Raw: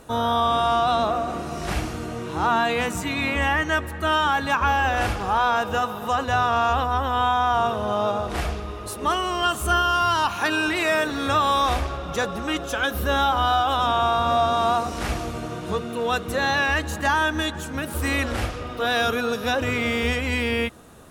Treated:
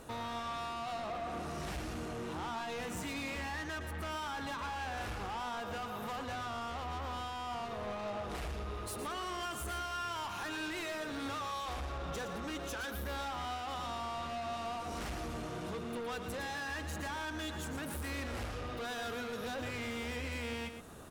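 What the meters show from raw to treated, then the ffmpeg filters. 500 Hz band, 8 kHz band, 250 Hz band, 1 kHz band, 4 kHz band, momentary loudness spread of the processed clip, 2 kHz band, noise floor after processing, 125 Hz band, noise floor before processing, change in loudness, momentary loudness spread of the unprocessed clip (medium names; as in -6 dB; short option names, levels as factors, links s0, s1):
-16.5 dB, -11.5 dB, -14.0 dB, -18.0 dB, -16.0 dB, 2 LU, -17.0 dB, -42 dBFS, -14.0 dB, -33 dBFS, -17.0 dB, 8 LU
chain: -af "acompressor=threshold=0.0398:ratio=3,asoftclip=type=tanh:threshold=0.0211,aecho=1:1:115:0.355,volume=0.631"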